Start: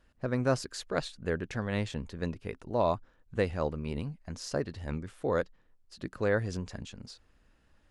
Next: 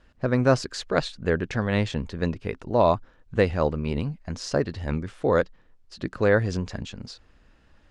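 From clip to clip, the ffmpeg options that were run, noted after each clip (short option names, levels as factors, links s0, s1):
-af "lowpass=6400,volume=2.51"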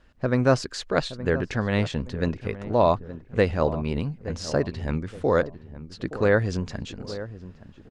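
-filter_complex "[0:a]asplit=2[s0][s1];[s1]adelay=871,lowpass=f=1000:p=1,volume=0.224,asplit=2[s2][s3];[s3]adelay=871,lowpass=f=1000:p=1,volume=0.42,asplit=2[s4][s5];[s5]adelay=871,lowpass=f=1000:p=1,volume=0.42,asplit=2[s6][s7];[s7]adelay=871,lowpass=f=1000:p=1,volume=0.42[s8];[s0][s2][s4][s6][s8]amix=inputs=5:normalize=0"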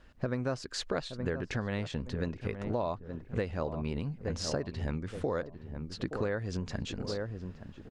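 -af "acompressor=threshold=0.0316:ratio=6"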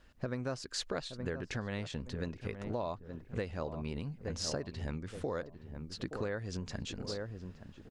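-af "highshelf=f=3800:g=6.5,volume=0.596"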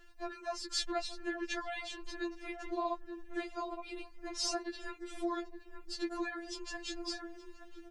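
-af "afftfilt=real='re*4*eq(mod(b,16),0)':imag='im*4*eq(mod(b,16),0)':win_size=2048:overlap=0.75,volume=1.88"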